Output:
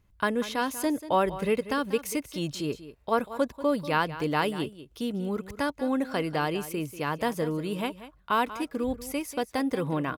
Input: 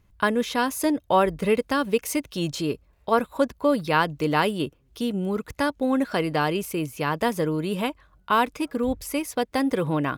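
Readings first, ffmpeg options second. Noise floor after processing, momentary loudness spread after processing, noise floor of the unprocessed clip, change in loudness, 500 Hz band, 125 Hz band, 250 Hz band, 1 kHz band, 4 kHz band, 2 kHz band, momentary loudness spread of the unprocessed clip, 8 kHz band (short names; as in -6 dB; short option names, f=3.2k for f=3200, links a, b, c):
-60 dBFS, 7 LU, -63 dBFS, -4.5 dB, -4.5 dB, -4.5 dB, -4.5 dB, -4.5 dB, -4.5 dB, -4.5 dB, 7 LU, -4.5 dB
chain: -af "aecho=1:1:189:0.188,volume=-4.5dB"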